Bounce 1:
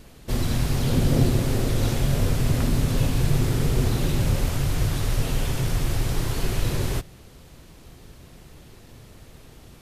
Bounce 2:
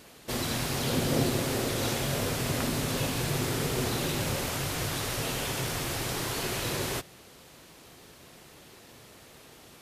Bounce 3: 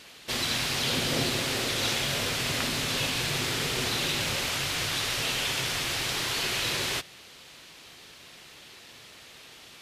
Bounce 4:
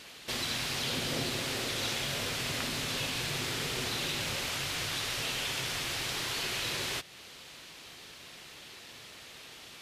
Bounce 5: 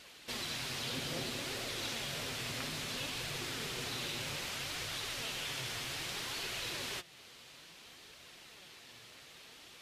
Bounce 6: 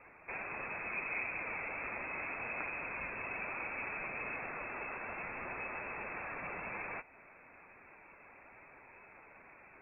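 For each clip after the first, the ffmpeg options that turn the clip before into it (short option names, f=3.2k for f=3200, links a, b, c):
-af "highpass=f=460:p=1,volume=1.5dB"
-af "equalizer=f=3.2k:t=o:w=2.7:g=12.5,volume=-4.5dB"
-af "acompressor=threshold=-40dB:ratio=1.5"
-af "flanger=delay=1.3:depth=7.7:regen=62:speed=0.61:shape=triangular,volume=-1.5dB"
-af "lowpass=f=2.3k:t=q:w=0.5098,lowpass=f=2.3k:t=q:w=0.6013,lowpass=f=2.3k:t=q:w=0.9,lowpass=f=2.3k:t=q:w=2.563,afreqshift=-2700,volume=2.5dB"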